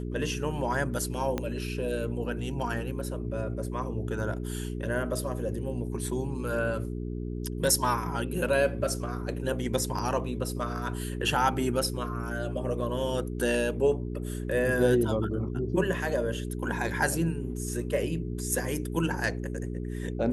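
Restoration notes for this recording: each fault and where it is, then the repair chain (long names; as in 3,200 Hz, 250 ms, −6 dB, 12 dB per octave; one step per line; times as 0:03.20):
mains hum 60 Hz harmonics 7 −34 dBFS
0:01.38: click −16 dBFS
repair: click removal
hum removal 60 Hz, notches 7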